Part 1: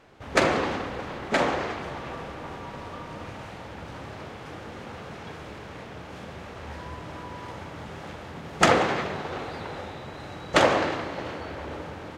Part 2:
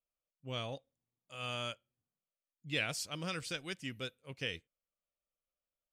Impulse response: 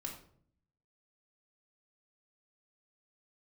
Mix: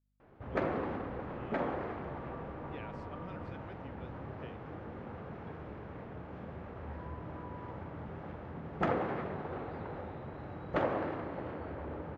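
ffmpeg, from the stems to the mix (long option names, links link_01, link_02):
-filter_complex "[0:a]equalizer=frequency=850:width=0.58:gain=-3.5,adelay=200,volume=-2.5dB[link_01];[1:a]aeval=exprs='val(0)+0.000282*(sin(2*PI*50*n/s)+sin(2*PI*2*50*n/s)/2+sin(2*PI*3*50*n/s)/3+sin(2*PI*4*50*n/s)/4+sin(2*PI*5*50*n/s)/5)':channel_layout=same,volume=-7dB[link_02];[link_01][link_02]amix=inputs=2:normalize=0,lowpass=1300,acompressor=threshold=-38dB:ratio=1.5"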